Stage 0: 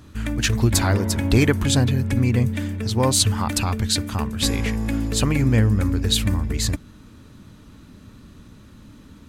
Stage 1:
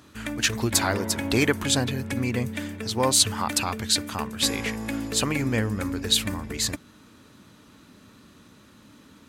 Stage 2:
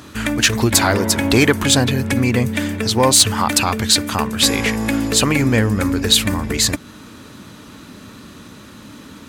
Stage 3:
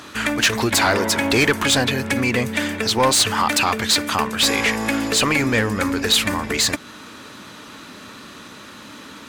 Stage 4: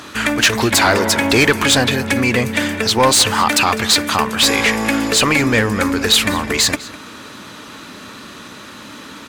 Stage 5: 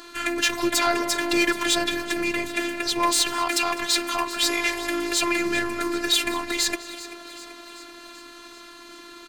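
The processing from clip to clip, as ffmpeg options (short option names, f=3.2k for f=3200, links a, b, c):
-af "highpass=f=390:p=1"
-filter_complex "[0:a]asplit=2[a][b];[b]acompressor=threshold=-32dB:ratio=6,volume=-1.5dB[c];[a][c]amix=inputs=2:normalize=0,asoftclip=type=tanh:threshold=-10.5dB,volume=8dB"
-filter_complex "[0:a]asplit=2[a][b];[b]highpass=f=720:p=1,volume=15dB,asoftclip=type=tanh:threshold=-2.5dB[c];[a][c]amix=inputs=2:normalize=0,lowpass=f=5.3k:p=1,volume=-6dB,volume=-5dB"
-filter_complex "[0:a]asplit=2[a][b];[b]adelay=204.1,volume=-17dB,highshelf=f=4k:g=-4.59[c];[a][c]amix=inputs=2:normalize=0,volume=4dB"
-filter_complex "[0:a]asplit=7[a][b][c][d][e][f][g];[b]adelay=386,afreqshift=54,volume=-16dB[h];[c]adelay=772,afreqshift=108,volume=-20.2dB[i];[d]adelay=1158,afreqshift=162,volume=-24.3dB[j];[e]adelay=1544,afreqshift=216,volume=-28.5dB[k];[f]adelay=1930,afreqshift=270,volume=-32.6dB[l];[g]adelay=2316,afreqshift=324,volume=-36.8dB[m];[a][h][i][j][k][l][m]amix=inputs=7:normalize=0,aeval=exprs='val(0)+0.0282*sin(2*PI*4300*n/s)':c=same,afftfilt=real='hypot(re,im)*cos(PI*b)':imag='0':win_size=512:overlap=0.75,volume=-5.5dB"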